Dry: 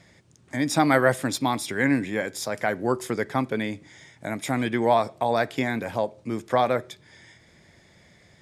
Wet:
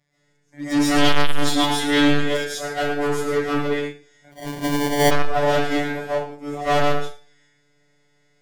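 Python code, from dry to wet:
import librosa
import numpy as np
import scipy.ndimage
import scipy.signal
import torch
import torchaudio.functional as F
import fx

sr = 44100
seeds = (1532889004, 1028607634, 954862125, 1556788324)

y = np.minimum(x, 2.0 * 10.0 ** (-17.5 / 20.0) - x)
y = y + 10.0 ** (-10.5 / 20.0) * np.pad(y, (int(110 * sr / 1000.0), 0))[:len(y)]
y = fx.robotise(y, sr, hz=145.0)
y = fx.rev_freeverb(y, sr, rt60_s=0.71, hf_ratio=0.85, predelay_ms=95, drr_db=-9.0)
y = fx.hpss(y, sr, part='harmonic', gain_db=7)
y = 10.0 ** (-10.0 / 20.0) * np.tanh(y / 10.0 ** (-10.0 / 20.0))
y = fx.peak_eq(y, sr, hz=3300.0, db=11.0, octaves=0.41, at=(0.98, 2.61))
y = fx.sample_hold(y, sr, seeds[0], rate_hz=1300.0, jitter_pct=0, at=(4.31, 5.1), fade=0.02)
y = fx.upward_expand(y, sr, threshold_db=-25.0, expansion=2.5)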